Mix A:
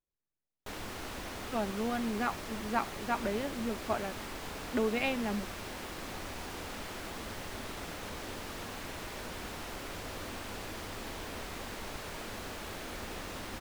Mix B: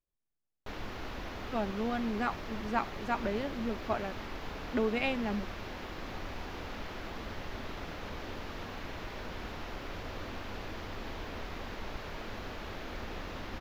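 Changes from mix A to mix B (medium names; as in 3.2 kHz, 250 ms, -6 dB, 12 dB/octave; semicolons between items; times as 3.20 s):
background: add boxcar filter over 5 samples; master: add bass shelf 62 Hz +6.5 dB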